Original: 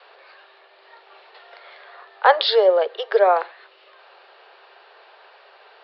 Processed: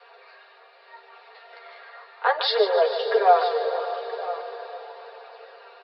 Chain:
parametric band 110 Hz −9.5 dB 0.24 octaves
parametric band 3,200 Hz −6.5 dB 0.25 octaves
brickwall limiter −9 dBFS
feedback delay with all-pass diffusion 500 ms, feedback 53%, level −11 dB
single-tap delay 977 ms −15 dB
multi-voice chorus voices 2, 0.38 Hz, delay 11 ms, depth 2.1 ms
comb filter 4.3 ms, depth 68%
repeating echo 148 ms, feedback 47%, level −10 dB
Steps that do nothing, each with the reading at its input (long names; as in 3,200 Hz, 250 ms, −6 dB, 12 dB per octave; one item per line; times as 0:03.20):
parametric band 110 Hz: nothing at its input below 340 Hz